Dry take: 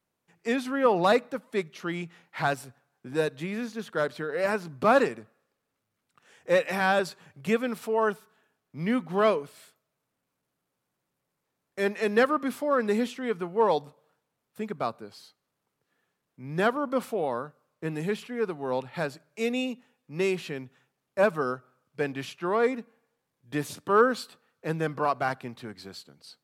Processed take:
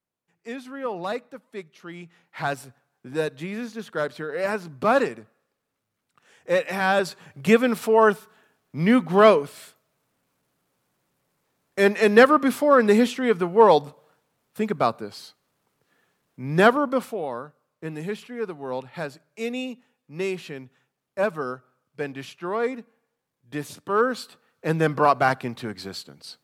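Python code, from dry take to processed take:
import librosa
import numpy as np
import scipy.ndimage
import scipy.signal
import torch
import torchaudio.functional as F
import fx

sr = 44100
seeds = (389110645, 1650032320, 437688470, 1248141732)

y = fx.gain(x, sr, db=fx.line((1.86, -7.5), (2.57, 1.0), (6.72, 1.0), (7.5, 8.5), (16.72, 8.5), (17.19, -1.0), (23.95, -1.0), (24.88, 8.0)))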